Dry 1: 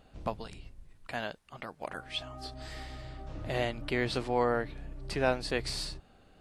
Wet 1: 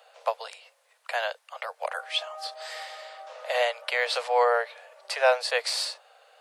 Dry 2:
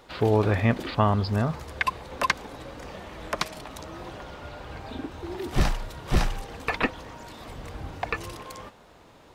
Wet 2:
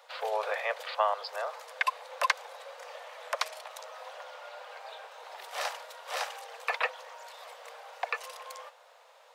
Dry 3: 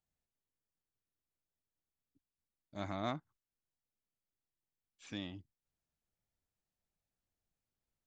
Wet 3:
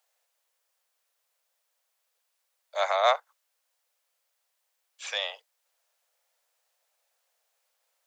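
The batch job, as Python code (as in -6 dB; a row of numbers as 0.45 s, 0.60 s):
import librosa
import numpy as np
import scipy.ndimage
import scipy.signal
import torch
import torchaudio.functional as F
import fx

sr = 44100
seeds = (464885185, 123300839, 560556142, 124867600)

y = scipy.signal.sosfilt(scipy.signal.butter(16, 480.0, 'highpass', fs=sr, output='sos'), x)
y = y * 10.0 ** (-9 / 20.0) / np.max(np.abs(y))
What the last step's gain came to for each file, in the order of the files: +8.5 dB, -2.5 dB, +17.5 dB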